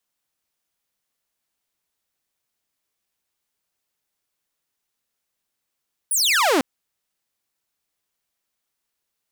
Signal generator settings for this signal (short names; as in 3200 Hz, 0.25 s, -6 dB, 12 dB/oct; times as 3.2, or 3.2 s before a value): laser zap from 11000 Hz, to 240 Hz, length 0.50 s saw, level -13 dB